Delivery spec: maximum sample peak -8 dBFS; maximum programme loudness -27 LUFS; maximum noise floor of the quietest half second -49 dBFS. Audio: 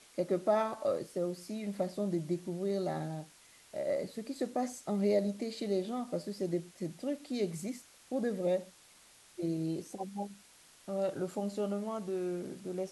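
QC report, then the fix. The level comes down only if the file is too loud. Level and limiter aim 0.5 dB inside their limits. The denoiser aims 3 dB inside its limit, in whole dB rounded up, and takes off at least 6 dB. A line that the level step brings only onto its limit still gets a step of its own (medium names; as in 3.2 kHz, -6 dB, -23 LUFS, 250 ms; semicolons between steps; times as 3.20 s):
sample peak -18.5 dBFS: pass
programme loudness -36.0 LUFS: pass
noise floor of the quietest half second -60 dBFS: pass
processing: none needed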